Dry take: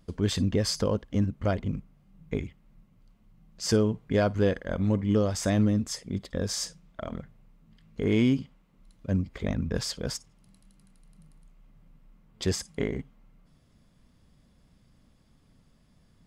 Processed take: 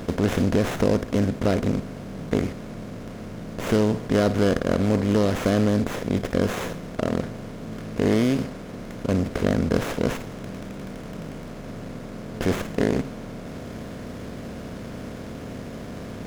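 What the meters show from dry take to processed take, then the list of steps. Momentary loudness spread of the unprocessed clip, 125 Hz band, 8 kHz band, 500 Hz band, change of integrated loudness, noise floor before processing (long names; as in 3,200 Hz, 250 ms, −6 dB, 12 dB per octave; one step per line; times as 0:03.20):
14 LU, +3.5 dB, −3.0 dB, +6.5 dB, +4.0 dB, −63 dBFS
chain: compressor on every frequency bin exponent 0.4
windowed peak hold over 9 samples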